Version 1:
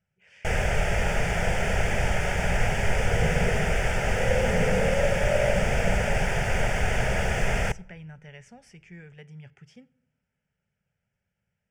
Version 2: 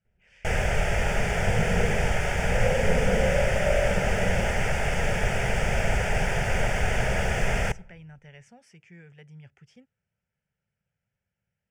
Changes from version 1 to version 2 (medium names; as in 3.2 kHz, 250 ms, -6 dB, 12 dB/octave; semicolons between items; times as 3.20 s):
speech: send off; second sound: entry -1.65 s